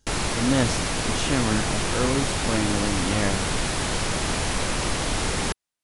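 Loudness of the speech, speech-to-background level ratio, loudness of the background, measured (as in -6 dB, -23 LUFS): -27.5 LUFS, -2.0 dB, -25.5 LUFS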